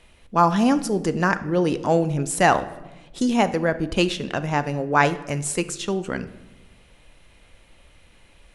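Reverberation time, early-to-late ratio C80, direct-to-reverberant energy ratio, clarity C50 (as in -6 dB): 1.1 s, 17.5 dB, 12.0 dB, 15.0 dB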